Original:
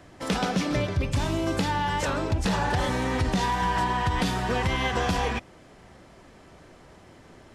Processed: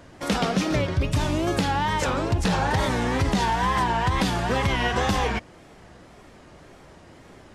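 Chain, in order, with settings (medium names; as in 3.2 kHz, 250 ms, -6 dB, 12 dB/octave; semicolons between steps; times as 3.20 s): wow and flutter 130 cents; trim +2.5 dB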